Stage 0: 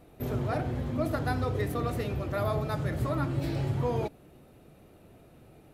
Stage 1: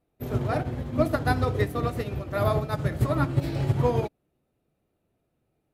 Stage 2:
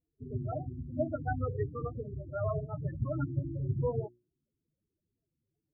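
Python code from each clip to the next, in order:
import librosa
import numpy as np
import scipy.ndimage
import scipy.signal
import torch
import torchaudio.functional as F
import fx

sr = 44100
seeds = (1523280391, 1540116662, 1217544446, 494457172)

y1 = fx.upward_expand(x, sr, threshold_db=-45.0, expansion=2.5)
y1 = y1 * librosa.db_to_amplitude(9.0)
y2 = fx.spec_topn(y1, sr, count=8)
y2 = fx.hum_notches(y2, sr, base_hz=60, count=6)
y2 = y2 * librosa.db_to_amplitude(-7.0)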